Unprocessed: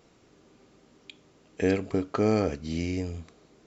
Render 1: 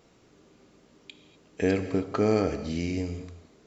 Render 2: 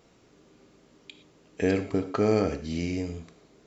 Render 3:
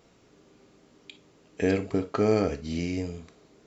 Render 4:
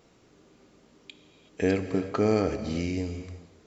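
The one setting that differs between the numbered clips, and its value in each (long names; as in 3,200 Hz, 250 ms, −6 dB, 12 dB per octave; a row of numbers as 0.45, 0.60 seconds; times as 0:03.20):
reverb whose tail is shaped and stops, gate: 270, 140, 80, 400 milliseconds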